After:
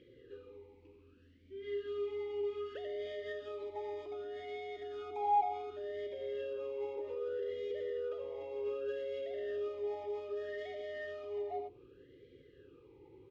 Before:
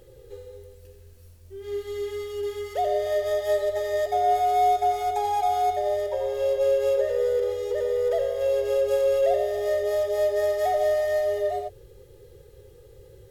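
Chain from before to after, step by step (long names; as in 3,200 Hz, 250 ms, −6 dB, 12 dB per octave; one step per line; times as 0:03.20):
dynamic equaliser 1,700 Hz, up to −7 dB, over −41 dBFS, Q 0.74
far-end echo of a speakerphone 100 ms, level −21 dB
brickwall limiter −21 dBFS, peak gain reduction 6 dB
high-frequency loss of the air 140 metres
formant filter swept between two vowels i-u 0.65 Hz
level +10.5 dB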